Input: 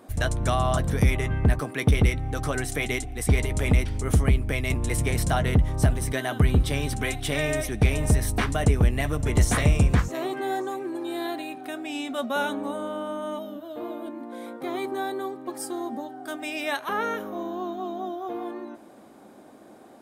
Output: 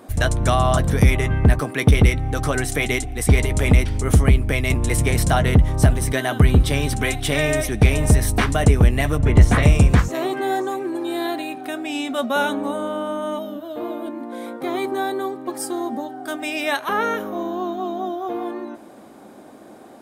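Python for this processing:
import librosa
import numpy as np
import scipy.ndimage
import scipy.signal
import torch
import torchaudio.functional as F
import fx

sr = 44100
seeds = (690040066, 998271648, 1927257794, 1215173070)

y = fx.bass_treble(x, sr, bass_db=3, treble_db=-12, at=(9.18, 9.63))
y = y * librosa.db_to_amplitude(6.0)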